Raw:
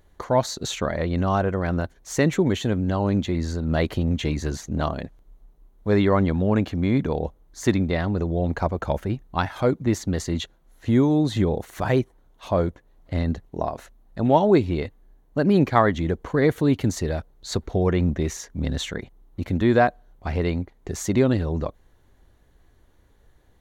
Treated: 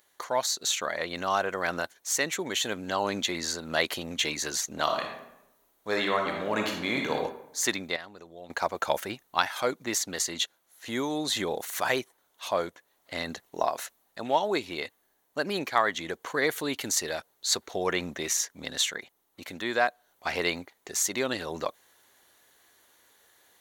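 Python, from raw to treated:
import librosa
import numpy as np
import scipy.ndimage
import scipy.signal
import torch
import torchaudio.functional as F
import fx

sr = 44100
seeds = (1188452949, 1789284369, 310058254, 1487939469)

y = fx.reverb_throw(x, sr, start_s=4.83, length_s=2.32, rt60_s=0.87, drr_db=1.5)
y = fx.edit(y, sr, fx.clip_gain(start_s=7.96, length_s=0.54, db=-10.5), tone=tone)
y = fx.highpass(y, sr, hz=610.0, slope=6)
y = fx.tilt_eq(y, sr, slope=3.0)
y = fx.rider(y, sr, range_db=4, speed_s=0.5)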